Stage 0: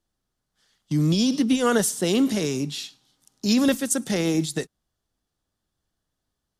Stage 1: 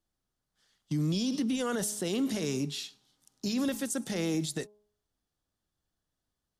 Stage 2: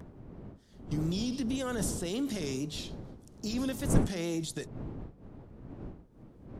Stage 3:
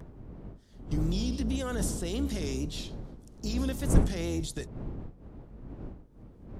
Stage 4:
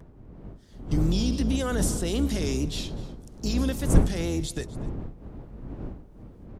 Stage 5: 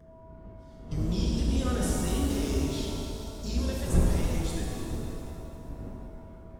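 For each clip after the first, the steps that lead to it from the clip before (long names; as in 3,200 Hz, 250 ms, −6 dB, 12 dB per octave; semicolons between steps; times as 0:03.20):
hum removal 208.7 Hz, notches 5; brickwall limiter −17.5 dBFS, peak gain reduction 10 dB; level −5 dB
wind on the microphone 240 Hz −35 dBFS; upward compression, threshold −41 dBFS; tape wow and flutter 74 cents; level −3 dB
sub-octave generator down 2 octaves, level +1 dB
automatic gain control gain up to 8 dB; single-tap delay 249 ms −19.5 dB; level −2.5 dB
flanger 0.4 Hz, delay 0.6 ms, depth 1.4 ms, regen −67%; steady tone 650 Hz −56 dBFS; reverb with rising layers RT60 2.5 s, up +7 semitones, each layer −8 dB, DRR −3 dB; level −4 dB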